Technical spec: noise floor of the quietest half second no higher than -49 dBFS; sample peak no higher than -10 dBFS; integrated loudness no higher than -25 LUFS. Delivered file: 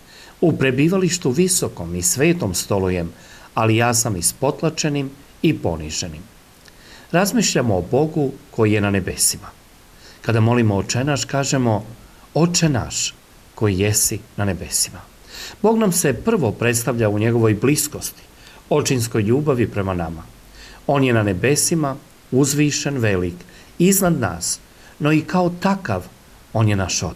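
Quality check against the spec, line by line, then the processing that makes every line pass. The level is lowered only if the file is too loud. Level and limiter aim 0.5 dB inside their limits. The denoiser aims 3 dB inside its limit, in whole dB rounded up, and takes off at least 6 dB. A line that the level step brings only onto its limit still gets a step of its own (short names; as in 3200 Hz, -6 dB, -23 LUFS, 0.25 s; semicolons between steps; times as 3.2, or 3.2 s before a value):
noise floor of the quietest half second -47 dBFS: fail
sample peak -5.5 dBFS: fail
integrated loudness -19.0 LUFS: fail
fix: gain -6.5 dB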